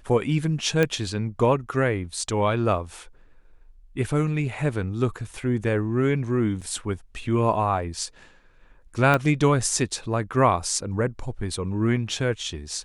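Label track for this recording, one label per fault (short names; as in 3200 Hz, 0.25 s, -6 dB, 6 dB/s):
0.830000	0.830000	pop -9 dBFS
6.610000	6.620000	gap 6.5 ms
9.140000	9.140000	pop -9 dBFS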